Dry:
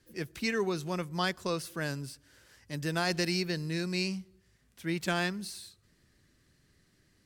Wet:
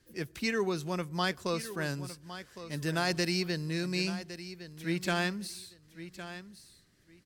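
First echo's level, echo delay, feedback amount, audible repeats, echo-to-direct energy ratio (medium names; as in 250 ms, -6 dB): -13.0 dB, 1110 ms, 20%, 2, -13.0 dB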